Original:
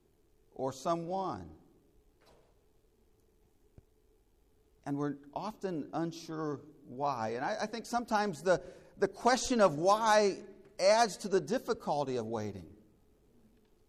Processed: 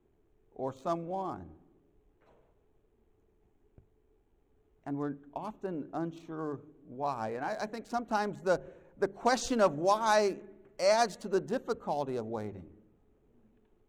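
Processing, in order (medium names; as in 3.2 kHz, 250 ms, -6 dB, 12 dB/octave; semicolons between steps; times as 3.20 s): local Wiener filter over 9 samples; hum notches 50/100/150/200 Hz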